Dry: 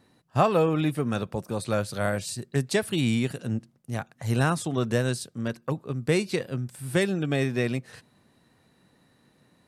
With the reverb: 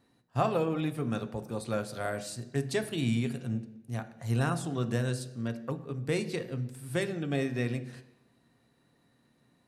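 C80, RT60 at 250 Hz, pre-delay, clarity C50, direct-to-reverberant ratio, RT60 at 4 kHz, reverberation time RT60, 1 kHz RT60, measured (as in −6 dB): 16.0 dB, 0.80 s, 3 ms, 13.5 dB, 8.0 dB, 0.90 s, 0.85 s, 0.85 s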